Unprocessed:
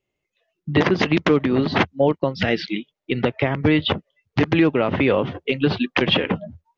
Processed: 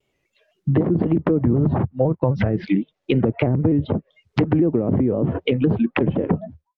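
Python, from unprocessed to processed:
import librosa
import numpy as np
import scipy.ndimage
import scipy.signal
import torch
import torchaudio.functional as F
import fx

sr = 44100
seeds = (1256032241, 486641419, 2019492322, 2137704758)

p1 = fx.fade_out_tail(x, sr, length_s=0.75)
p2 = fx.graphic_eq(p1, sr, hz=(125, 250, 500, 1000, 4000), db=(6, -6, -3, 4, -3), at=(1.41, 2.64))
p3 = fx.over_compress(p2, sr, threshold_db=-23.0, ratio=-0.5)
p4 = p2 + (p3 * 10.0 ** (-1.0 / 20.0))
p5 = fx.env_lowpass_down(p4, sr, base_hz=370.0, full_db=-12.0)
y = fx.vibrato_shape(p5, sr, shape='square', rate_hz=3.9, depth_cents=100.0)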